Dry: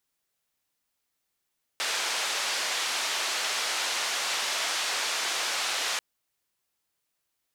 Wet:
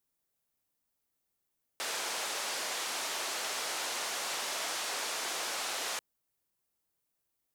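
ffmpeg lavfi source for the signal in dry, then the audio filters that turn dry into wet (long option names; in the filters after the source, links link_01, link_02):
-f lavfi -i "anoisesrc=color=white:duration=4.19:sample_rate=44100:seed=1,highpass=frequency=610,lowpass=frequency=5500,volume=-18.4dB"
-af "equalizer=frequency=2900:width=0.33:gain=-8.5"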